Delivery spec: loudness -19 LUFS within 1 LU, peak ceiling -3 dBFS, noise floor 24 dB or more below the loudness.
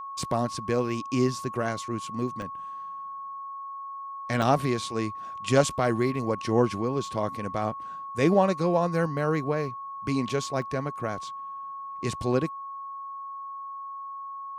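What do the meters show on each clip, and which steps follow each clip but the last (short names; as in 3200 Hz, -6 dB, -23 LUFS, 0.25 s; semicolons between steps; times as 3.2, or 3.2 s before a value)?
dropouts 4; longest dropout 1.5 ms; steady tone 1100 Hz; tone level -35 dBFS; loudness -29.0 LUFS; peak -8.0 dBFS; loudness target -19.0 LUFS
-> interpolate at 0.23/2.42/4.42/10.62, 1.5 ms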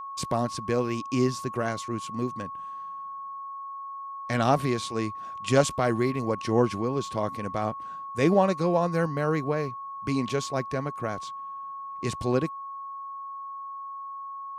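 dropouts 0; steady tone 1100 Hz; tone level -35 dBFS
-> notch 1100 Hz, Q 30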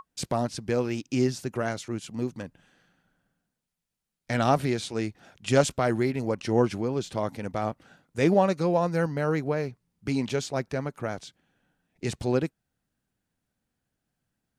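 steady tone none; loudness -28.0 LUFS; peak -8.0 dBFS; loudness target -19.0 LUFS
-> gain +9 dB; limiter -3 dBFS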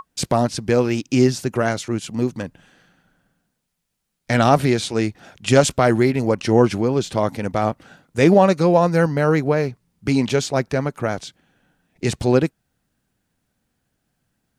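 loudness -19.0 LUFS; peak -3.0 dBFS; noise floor -75 dBFS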